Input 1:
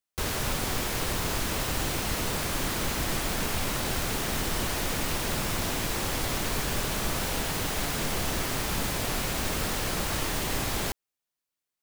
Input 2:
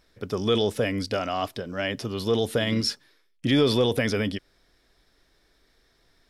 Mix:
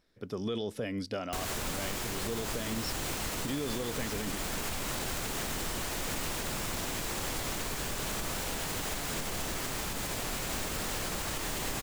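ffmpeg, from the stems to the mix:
-filter_complex "[0:a]equalizer=f=7.4k:w=3.2:g=3.5,adelay=1150,volume=-2.5dB[a];[1:a]equalizer=f=200:t=o:w=2.1:g=5,volume=-9.5dB[b];[a][b]amix=inputs=2:normalize=0,equalizer=f=81:t=o:w=2.5:g=-2.5,alimiter=level_in=0.5dB:limit=-24dB:level=0:latency=1:release=104,volume=-0.5dB"

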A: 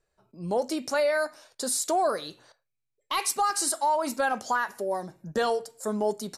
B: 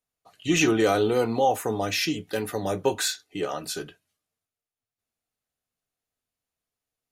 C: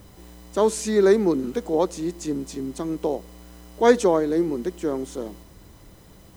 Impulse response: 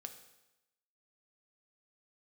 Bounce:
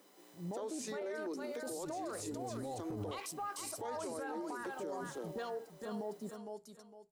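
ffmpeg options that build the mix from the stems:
-filter_complex "[0:a]volume=-8dB,asplit=3[a][b][c];[b]volume=-12dB[d];[1:a]aemphasis=mode=reproduction:type=riaa,acompressor=threshold=-28dB:ratio=2,adelay=1250,volume=-5dB[e];[2:a]highpass=f=280:w=0.5412,highpass=f=280:w=1.3066,acompressor=threshold=-26dB:ratio=3,volume=-10.5dB[f];[c]apad=whole_len=369089[g];[e][g]sidechaincompress=threshold=-50dB:ratio=8:attack=16:release=672[h];[a][h]amix=inputs=2:normalize=0,afwtdn=0.00501,alimiter=level_in=8dB:limit=-24dB:level=0:latency=1:release=51,volume=-8dB,volume=0dB[i];[d]aecho=0:1:458|916|1374|1832:1|0.29|0.0841|0.0244[j];[f][i][j]amix=inputs=3:normalize=0,alimiter=level_in=9.5dB:limit=-24dB:level=0:latency=1:release=31,volume=-9.5dB"

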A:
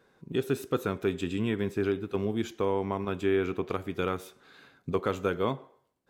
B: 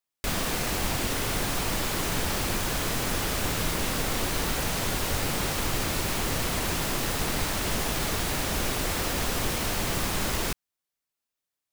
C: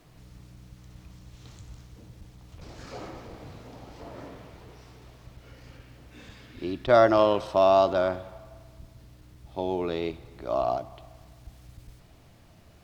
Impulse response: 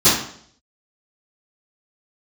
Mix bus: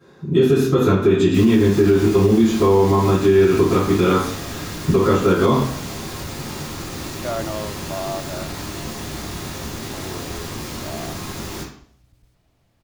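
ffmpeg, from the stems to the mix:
-filter_complex "[0:a]volume=-4.5dB,asplit=2[a][b];[b]volume=-4dB[c];[1:a]asoftclip=type=tanh:threshold=-25dB,adelay=1100,volume=-7dB,asplit=2[d][e];[e]volume=-17dB[f];[2:a]adelay=350,volume=-9dB[g];[3:a]atrim=start_sample=2205[h];[c][f]amix=inputs=2:normalize=0[i];[i][h]afir=irnorm=-1:irlink=0[j];[a][d][g][j]amix=inputs=4:normalize=0,alimiter=limit=-6dB:level=0:latency=1:release=115"

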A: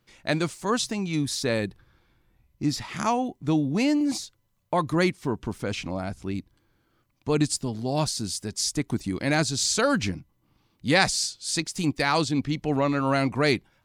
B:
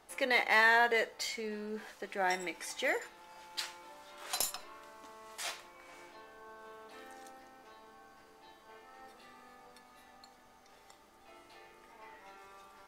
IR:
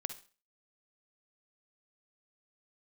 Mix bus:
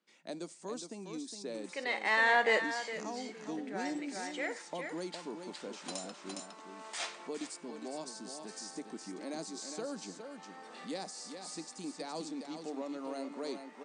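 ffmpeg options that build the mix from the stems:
-filter_complex "[0:a]highpass=190,acrossover=split=270|830|4500[a][b][c][d];[a]acompressor=threshold=-42dB:ratio=4[e];[b]acompressor=threshold=-28dB:ratio=4[f];[c]acompressor=threshold=-51dB:ratio=4[g];[d]acompressor=threshold=-35dB:ratio=4[h];[e][f][g][h]amix=inputs=4:normalize=0,volume=-12dB,asplit=4[i][j][k][l];[j]volume=-14dB[m];[k]volume=-6dB[n];[1:a]acompressor=mode=upward:threshold=-41dB:ratio=2.5,adelay=1550,volume=1.5dB,asplit=3[o][p][q];[p]volume=-15dB[r];[q]volume=-12.5dB[s];[l]apad=whole_len=636084[t];[o][t]sidechaincompress=threshold=-59dB:ratio=4:attack=16:release=683[u];[2:a]atrim=start_sample=2205[v];[m][r]amix=inputs=2:normalize=0[w];[w][v]afir=irnorm=-1:irlink=0[x];[n][s]amix=inputs=2:normalize=0,aecho=0:1:411:1[y];[i][u][x][y]amix=inputs=4:normalize=0,afftfilt=real='re*between(b*sr/4096,160,9500)':imag='im*between(b*sr/4096,160,9500)':win_size=4096:overlap=0.75"

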